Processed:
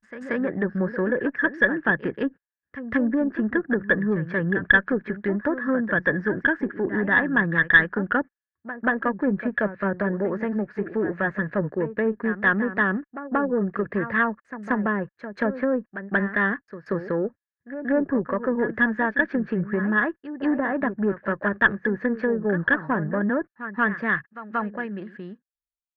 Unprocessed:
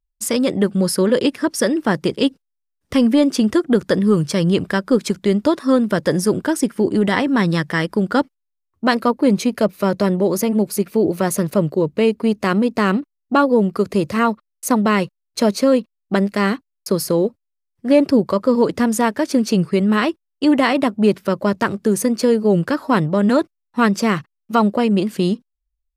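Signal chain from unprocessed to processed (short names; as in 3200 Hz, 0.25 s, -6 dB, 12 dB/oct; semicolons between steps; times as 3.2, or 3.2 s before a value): ending faded out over 2.71 s; treble ducked by the level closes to 700 Hz, closed at -10.5 dBFS; in parallel at -11 dB: sine folder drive 3 dB, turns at -3 dBFS; on the sum: synth low-pass 1700 Hz, resonance Q 16; on a send: reverse echo 0.182 s -12 dB; on the sum: added harmonics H 2 -17 dB, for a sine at 9.5 dBFS; gain -12.5 dB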